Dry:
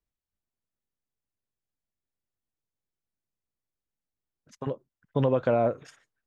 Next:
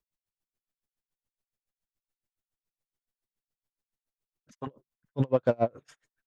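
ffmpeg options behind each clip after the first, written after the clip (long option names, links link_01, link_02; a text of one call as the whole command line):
ffmpeg -i in.wav -filter_complex "[0:a]acrossover=split=840[link_01][link_02];[link_02]asoftclip=type=tanh:threshold=-33dB[link_03];[link_01][link_03]amix=inputs=2:normalize=0,aeval=exprs='val(0)*pow(10,-35*(0.5-0.5*cos(2*PI*7.1*n/s))/20)':channel_layout=same,volume=3.5dB" out.wav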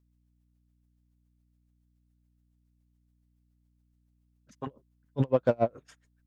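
ffmpeg -i in.wav -af "aeval=exprs='val(0)+0.000398*(sin(2*PI*60*n/s)+sin(2*PI*2*60*n/s)/2+sin(2*PI*3*60*n/s)/3+sin(2*PI*4*60*n/s)/4+sin(2*PI*5*60*n/s)/5)':channel_layout=same" out.wav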